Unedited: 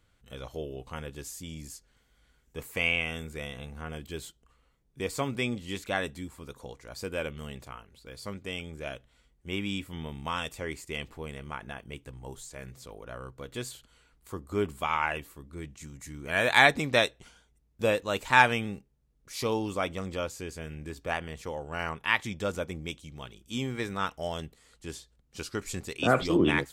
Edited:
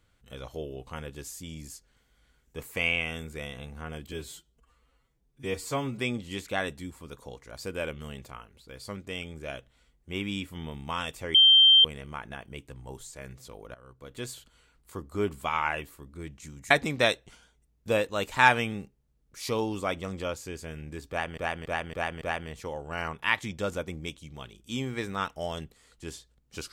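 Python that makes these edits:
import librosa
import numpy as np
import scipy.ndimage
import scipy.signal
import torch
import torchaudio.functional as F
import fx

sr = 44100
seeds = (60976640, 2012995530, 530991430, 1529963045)

y = fx.edit(x, sr, fx.stretch_span(start_s=4.12, length_s=1.25, factor=1.5),
    fx.bleep(start_s=10.72, length_s=0.5, hz=3150.0, db=-13.5),
    fx.fade_in_from(start_s=13.12, length_s=0.55, floor_db=-17.5),
    fx.cut(start_s=16.08, length_s=0.56),
    fx.repeat(start_s=21.03, length_s=0.28, count=5), tone=tone)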